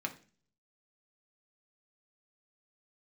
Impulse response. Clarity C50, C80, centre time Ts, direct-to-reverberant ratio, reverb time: 14.0 dB, 19.0 dB, 8 ms, 2.0 dB, 0.40 s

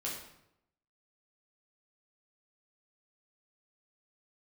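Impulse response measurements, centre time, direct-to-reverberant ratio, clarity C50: 44 ms, −5.0 dB, 3.5 dB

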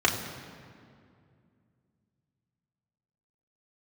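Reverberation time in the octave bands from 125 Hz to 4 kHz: 3.4, 3.2, 2.5, 2.2, 1.9, 1.5 seconds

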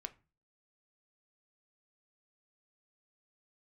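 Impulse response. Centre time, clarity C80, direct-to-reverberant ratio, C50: 4 ms, 25.0 dB, 8.5 dB, 19.5 dB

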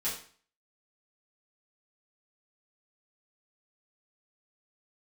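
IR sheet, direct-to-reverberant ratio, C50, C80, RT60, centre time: −10.0 dB, 5.5 dB, 10.0 dB, 0.45 s, 35 ms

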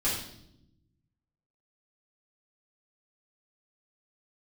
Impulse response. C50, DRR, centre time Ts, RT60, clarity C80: 3.0 dB, −9.0 dB, 45 ms, non-exponential decay, 7.0 dB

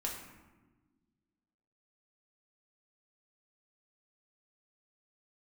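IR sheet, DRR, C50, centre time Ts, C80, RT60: −2.0 dB, 4.5 dB, 43 ms, 6.5 dB, 1.3 s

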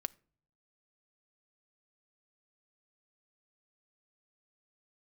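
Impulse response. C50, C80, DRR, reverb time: 24.5 dB, 29.0 dB, 16.0 dB, non-exponential decay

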